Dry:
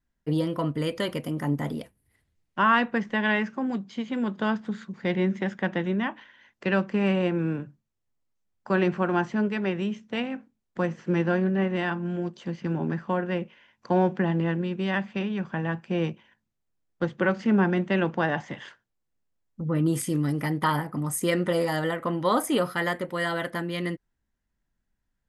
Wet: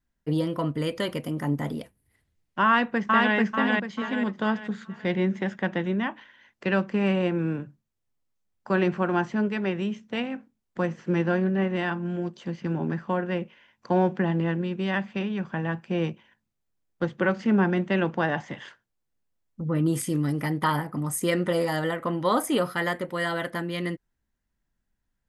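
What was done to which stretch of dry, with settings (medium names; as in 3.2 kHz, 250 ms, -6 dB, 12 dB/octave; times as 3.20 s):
2.65–3.35 s: echo throw 440 ms, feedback 40%, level -1 dB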